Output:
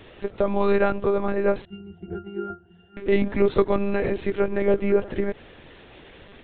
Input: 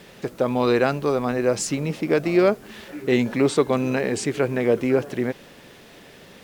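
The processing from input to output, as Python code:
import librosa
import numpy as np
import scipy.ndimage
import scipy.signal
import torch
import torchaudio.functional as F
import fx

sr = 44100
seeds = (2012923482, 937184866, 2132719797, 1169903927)

y = fx.lpc_monotone(x, sr, seeds[0], pitch_hz=200.0, order=16)
y = fx.dynamic_eq(y, sr, hz=3100.0, q=0.99, threshold_db=-42.0, ratio=4.0, max_db=-5)
y = fx.octave_resonator(y, sr, note='F', decay_s=0.19, at=(1.65, 2.97))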